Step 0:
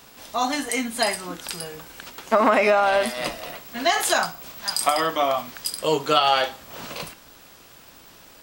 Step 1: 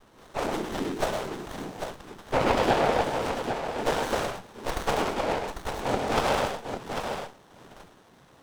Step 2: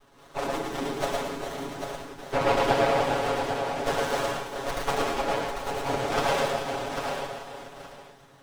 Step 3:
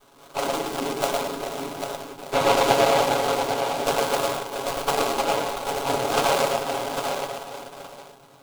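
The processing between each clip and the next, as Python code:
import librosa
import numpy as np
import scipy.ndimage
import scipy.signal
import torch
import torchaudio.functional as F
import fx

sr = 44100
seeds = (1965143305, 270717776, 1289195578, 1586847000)

y1 = fx.noise_vocoder(x, sr, seeds[0], bands=6)
y1 = fx.echo_multitap(y1, sr, ms=(102, 124, 797), db=(-7.5, -8.0, -7.0))
y1 = fx.running_max(y1, sr, window=17)
y1 = F.gain(torch.from_numpy(y1), -4.5).numpy()
y2 = fx.low_shelf(y1, sr, hz=330.0, db=-3.0)
y2 = y2 + 0.91 * np.pad(y2, (int(7.2 * sr / 1000.0), 0))[:len(y2)]
y2 = fx.echo_multitap(y2, sr, ms=(111, 399, 429, 688, 872), db=(-4.0, -10.5, -11.0, -14.5, -13.5))
y2 = F.gain(torch.from_numpy(y2), -3.5).numpy()
y3 = scipy.signal.medfilt(y2, 25)
y3 = fx.tilt_eq(y3, sr, slope=2.5)
y3 = fx.notch(y3, sr, hz=1800.0, q=11.0)
y3 = F.gain(torch.from_numpy(y3), 7.0).numpy()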